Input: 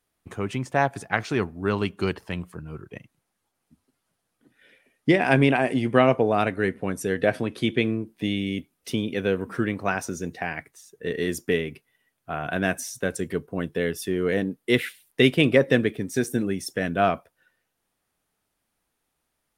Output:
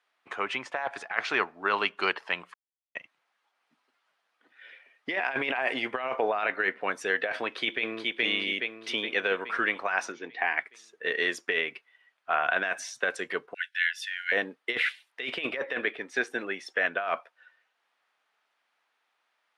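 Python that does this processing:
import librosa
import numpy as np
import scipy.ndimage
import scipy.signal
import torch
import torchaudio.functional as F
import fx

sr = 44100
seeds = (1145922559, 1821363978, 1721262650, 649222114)

y = fx.lowpass(x, sr, hz=fx.line((6.28, 4500.0), (6.79, 7500.0)), slope=12, at=(6.28, 6.79), fade=0.02)
y = fx.echo_throw(y, sr, start_s=7.49, length_s=0.59, ms=420, feedback_pct=55, wet_db=-5.0)
y = fx.cabinet(y, sr, low_hz=110.0, low_slope=12, high_hz=3900.0, hz=(200.0, 290.0, 570.0, 1400.0, 2600.0), db=(-9, 5, -9, -8, -5), at=(10.11, 10.56), fade=0.02)
y = fx.brickwall_highpass(y, sr, low_hz=1400.0, at=(13.54, 14.32))
y = fx.bass_treble(y, sr, bass_db=-4, treble_db=-8, at=(15.62, 17.08))
y = fx.edit(y, sr, fx.silence(start_s=2.54, length_s=0.41), tone=tone)
y = scipy.signal.sosfilt(scipy.signal.butter(2, 920.0, 'highpass', fs=sr, output='sos'), y)
y = fx.over_compress(y, sr, threshold_db=-32.0, ratio=-1.0)
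y = scipy.signal.sosfilt(scipy.signal.butter(2, 3100.0, 'lowpass', fs=sr, output='sos'), y)
y = F.gain(torch.from_numpy(y), 5.5).numpy()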